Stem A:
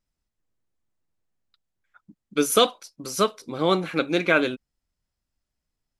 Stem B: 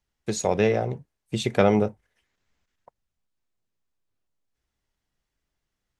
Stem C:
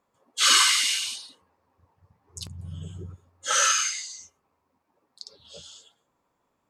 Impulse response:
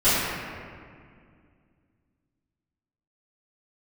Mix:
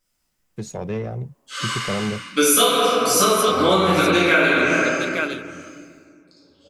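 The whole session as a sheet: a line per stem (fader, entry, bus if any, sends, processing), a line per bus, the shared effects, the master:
-0.5 dB, 0.00 s, send -6 dB, echo send -4.5 dB, tilt EQ +2.5 dB/octave; vibrato 9.3 Hz 6.1 cents
-7.0 dB, 0.30 s, no send, no echo send, single-diode clipper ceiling -16 dBFS; peaking EQ 140 Hz +11.5 dB 1.4 oct
-13.5 dB, 1.10 s, send -7 dB, echo send -6 dB, treble shelf 2.5 kHz -9.5 dB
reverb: on, RT60 2.1 s, pre-delay 3 ms
echo: delay 871 ms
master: peaking EQ 4 kHz -2 dB; compression 6:1, threshold -13 dBFS, peak gain reduction 11 dB

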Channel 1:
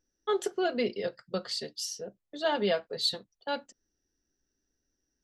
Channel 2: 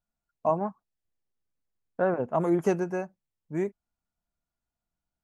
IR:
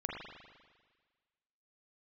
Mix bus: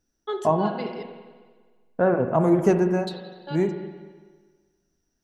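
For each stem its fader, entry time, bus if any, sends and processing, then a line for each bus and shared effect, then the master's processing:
+0.5 dB, 0.00 s, muted 1.03–3.07 s, send -9 dB, high-pass 190 Hz; auto duck -15 dB, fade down 0.25 s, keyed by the second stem
-0.5 dB, 0.00 s, send -3.5 dB, none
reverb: on, RT60 1.5 s, pre-delay 39 ms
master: bass shelf 240 Hz +7 dB

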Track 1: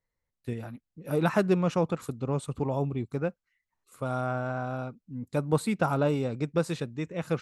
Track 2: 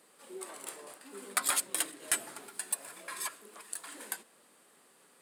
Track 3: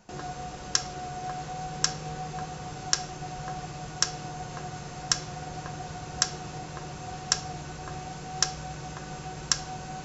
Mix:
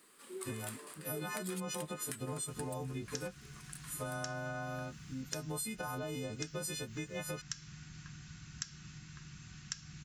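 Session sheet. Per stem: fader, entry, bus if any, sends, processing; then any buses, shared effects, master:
-3.5 dB, 0.00 s, no send, partials quantised in pitch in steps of 3 st; peak limiter -21 dBFS, peak gain reduction 9.5 dB; treble shelf 4.9 kHz +7 dB
2.36 s 0 dB -> 2.91 s -7.5 dB, 0.00 s, no send, high-order bell 650 Hz -9 dB 1 oct; compression, threshold -36 dBFS, peak gain reduction 11.5 dB
-9.5 dB, 2.40 s, no send, Chebyshev band-stop 200–1700 Hz, order 2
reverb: none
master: compression, threshold -37 dBFS, peak gain reduction 10.5 dB

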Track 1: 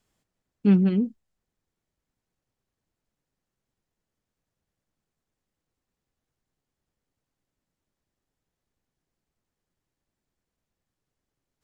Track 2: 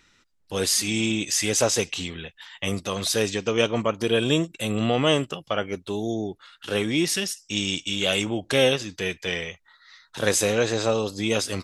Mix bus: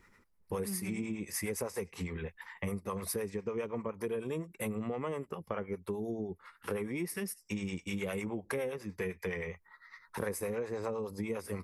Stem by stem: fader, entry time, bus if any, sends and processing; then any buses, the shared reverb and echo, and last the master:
+0.5 dB, 0.00 s, no send, auto duck -12 dB, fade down 0.40 s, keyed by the second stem
+2.5 dB, 0.00 s, no send, high-order bell 4.2 kHz -15.5 dB; harmonic tremolo 9.8 Hz, depth 70%, crossover 500 Hz; rippled EQ curve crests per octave 0.84, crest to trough 8 dB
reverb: none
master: compression 10:1, threshold -33 dBFS, peak gain reduction 17 dB

